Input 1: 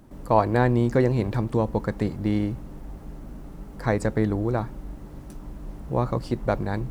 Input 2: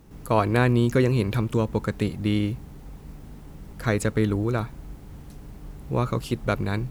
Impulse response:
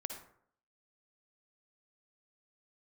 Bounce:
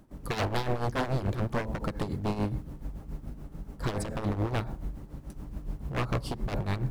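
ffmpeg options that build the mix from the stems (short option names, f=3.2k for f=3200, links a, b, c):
-filter_complex "[0:a]volume=-6dB,asplit=3[a][b][c];[b]volume=-5dB[d];[1:a]lowshelf=f=140:g=9,acompressor=threshold=-24dB:ratio=2,volume=-3.5dB[e];[c]apad=whole_len=304543[f];[e][f]sidechaingate=range=-33dB:threshold=-43dB:ratio=16:detection=peak[g];[2:a]atrim=start_sample=2205[h];[d][h]afir=irnorm=-1:irlink=0[i];[a][g][i]amix=inputs=3:normalize=0,aeval=exprs='0.0891*(abs(mod(val(0)/0.0891+3,4)-2)-1)':c=same,tremolo=f=7:d=0.71"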